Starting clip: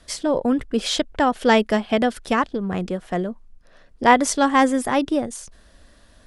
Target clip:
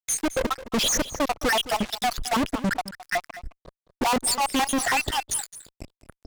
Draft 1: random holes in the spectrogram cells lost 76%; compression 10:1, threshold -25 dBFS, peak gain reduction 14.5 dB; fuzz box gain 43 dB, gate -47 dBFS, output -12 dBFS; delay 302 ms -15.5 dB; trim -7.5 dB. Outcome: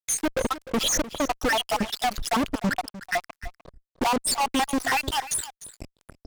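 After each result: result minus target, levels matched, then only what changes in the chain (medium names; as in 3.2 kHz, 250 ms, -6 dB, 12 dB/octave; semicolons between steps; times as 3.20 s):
compression: peak gain reduction +14.5 dB; echo 87 ms late
remove: compression 10:1, threshold -25 dBFS, peak gain reduction 14.5 dB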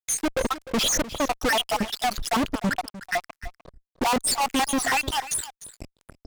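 echo 87 ms late
change: delay 215 ms -15.5 dB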